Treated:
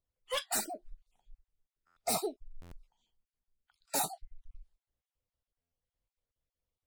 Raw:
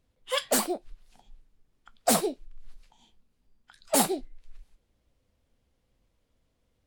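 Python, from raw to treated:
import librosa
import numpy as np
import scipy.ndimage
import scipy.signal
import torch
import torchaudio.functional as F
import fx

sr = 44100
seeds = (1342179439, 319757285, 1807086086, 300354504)

y = fx.spec_dropout(x, sr, seeds[0], share_pct=27)
y = fx.peak_eq(y, sr, hz=240.0, db=-8.5, octaves=1.1)
y = np.clip(y, -10.0 ** (-24.0 / 20.0), 10.0 ** (-24.0 / 20.0))
y = fx.noise_reduce_blind(y, sr, reduce_db=13)
y = fx.buffer_glitch(y, sr, at_s=(1.86, 2.61, 5.61), block=512, repeats=8)
y = y * librosa.db_to_amplitude(-3.0)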